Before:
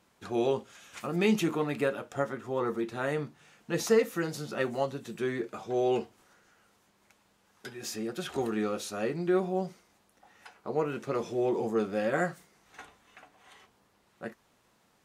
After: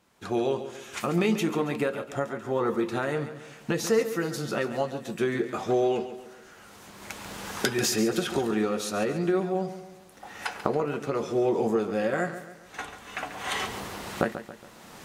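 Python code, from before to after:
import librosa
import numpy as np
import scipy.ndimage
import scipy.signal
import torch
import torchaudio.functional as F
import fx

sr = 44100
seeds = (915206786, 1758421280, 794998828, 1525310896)

y = fx.recorder_agc(x, sr, target_db=-17.0, rise_db_per_s=20.0, max_gain_db=30)
y = fx.echo_feedback(y, sr, ms=139, feedback_pct=45, wet_db=-11.5)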